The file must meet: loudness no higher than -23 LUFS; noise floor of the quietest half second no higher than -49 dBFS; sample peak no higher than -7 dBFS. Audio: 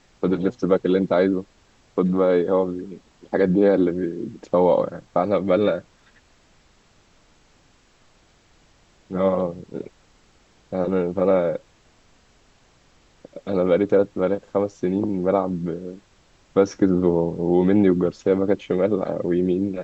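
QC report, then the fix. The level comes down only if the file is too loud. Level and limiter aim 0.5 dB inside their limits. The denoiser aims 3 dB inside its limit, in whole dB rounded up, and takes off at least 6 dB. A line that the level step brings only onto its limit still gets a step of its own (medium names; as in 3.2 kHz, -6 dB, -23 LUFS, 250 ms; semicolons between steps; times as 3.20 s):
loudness -21.5 LUFS: fail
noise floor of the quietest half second -57 dBFS: pass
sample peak -5.0 dBFS: fail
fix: trim -2 dB; peak limiter -7.5 dBFS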